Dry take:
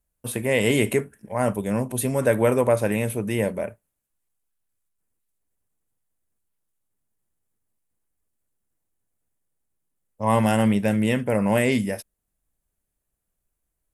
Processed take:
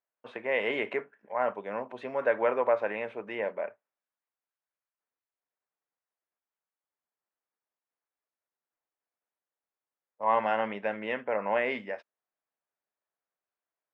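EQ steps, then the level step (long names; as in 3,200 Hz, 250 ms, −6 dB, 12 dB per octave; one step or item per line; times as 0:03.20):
band-pass filter 690–2,100 Hz
high-frequency loss of the air 160 metres
0.0 dB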